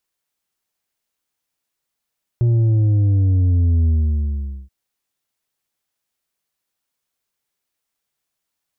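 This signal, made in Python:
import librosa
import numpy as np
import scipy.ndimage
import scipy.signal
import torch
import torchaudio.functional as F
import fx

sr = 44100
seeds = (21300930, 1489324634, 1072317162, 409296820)

y = fx.sub_drop(sr, level_db=-13.0, start_hz=120.0, length_s=2.28, drive_db=5.5, fade_s=0.82, end_hz=65.0)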